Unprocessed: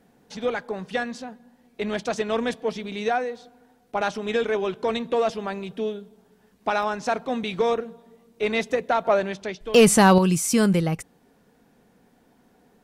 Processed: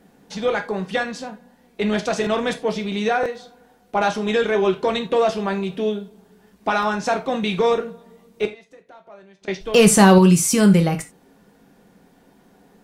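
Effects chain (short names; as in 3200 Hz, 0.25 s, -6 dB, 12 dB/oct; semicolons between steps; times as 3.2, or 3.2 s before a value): in parallel at +1 dB: limiter -16 dBFS, peak gain reduction 8 dB; 8.45–9.48 on the sum: flipped gate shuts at -20 dBFS, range -27 dB; non-linear reverb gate 0.11 s falling, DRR 5.5 dB; stuck buffer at 2.22/3.21, samples 1024, times 1; gain -2 dB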